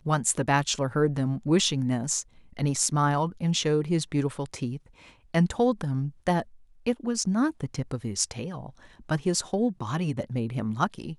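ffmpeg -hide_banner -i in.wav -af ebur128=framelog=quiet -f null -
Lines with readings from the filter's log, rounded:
Integrated loudness:
  I:         -27.1 LUFS
  Threshold: -37.4 LUFS
Loudness range:
  LRA:         3.8 LU
  Threshold: -47.6 LUFS
  LRA low:   -29.5 LUFS
  LRA high:  -25.7 LUFS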